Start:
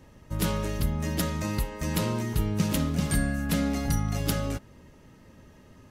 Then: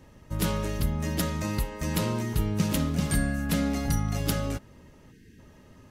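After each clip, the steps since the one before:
gain on a spectral selection 0:05.12–0:05.39, 480–1,500 Hz −23 dB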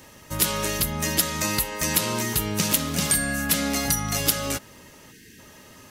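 spectral tilt +3 dB per octave
downward compressor 2.5 to 1, threshold −29 dBFS, peak gain reduction 8 dB
level +8.5 dB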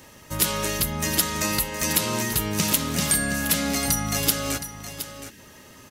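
single-tap delay 718 ms −11.5 dB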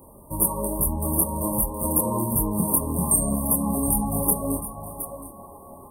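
delay with a band-pass on its return 309 ms, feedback 79%, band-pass 1,200 Hz, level −11 dB
multi-voice chorus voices 6, 1 Hz, delay 25 ms, depth 3 ms
brick-wall band-stop 1,200–8,400 Hz
level +5.5 dB

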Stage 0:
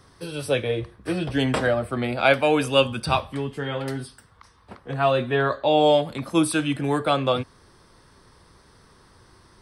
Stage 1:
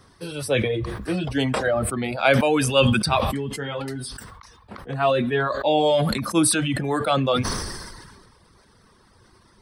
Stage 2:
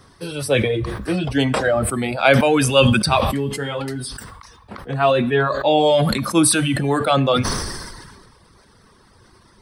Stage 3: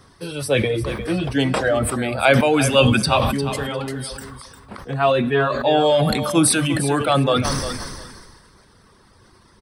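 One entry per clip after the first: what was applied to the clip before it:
reverb reduction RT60 1.1 s; parametric band 210 Hz +5.5 dB 0.2 octaves; level that may fall only so fast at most 35 dB per second
tuned comb filter 140 Hz, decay 0.9 s, harmonics all, mix 40%; level +8 dB
repeating echo 352 ms, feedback 17%, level −11 dB; level −1 dB

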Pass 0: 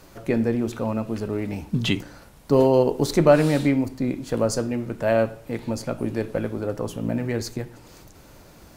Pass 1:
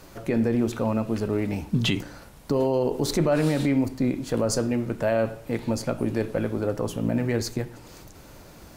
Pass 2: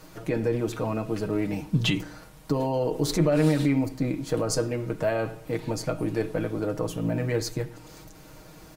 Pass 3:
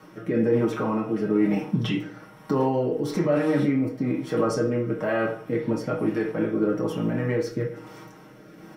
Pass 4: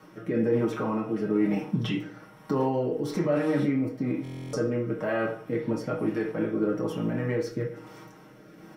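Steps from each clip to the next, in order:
brickwall limiter −15 dBFS, peak gain reduction 11.5 dB; level +1.5 dB
comb filter 6.4 ms, depth 67%; level −2.5 dB
brickwall limiter −17.5 dBFS, peak gain reduction 6 dB; rotating-speaker cabinet horn 1.1 Hz; convolution reverb RT60 0.50 s, pre-delay 3 ms, DRR −1.5 dB; level −6 dB
buffer that repeats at 0:04.23, samples 1,024, times 12; level −3 dB

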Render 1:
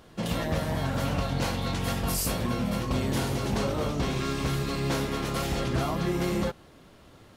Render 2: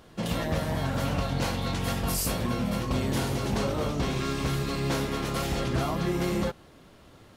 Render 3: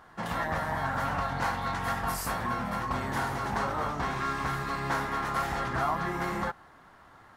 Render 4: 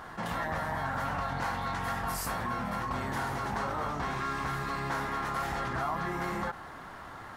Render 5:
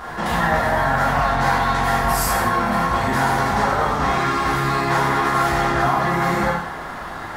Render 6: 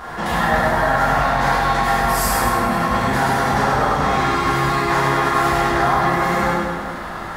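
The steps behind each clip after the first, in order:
no processing that can be heard
flat-topped bell 1,200 Hz +13.5 dB; level −7.5 dB
envelope flattener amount 50%; level −4.5 dB
reverb whose tail is shaped and stops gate 260 ms falling, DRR −4.5 dB; level +8.5 dB
echo with a time of its own for lows and highs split 420 Hz, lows 202 ms, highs 101 ms, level −4.5 dB

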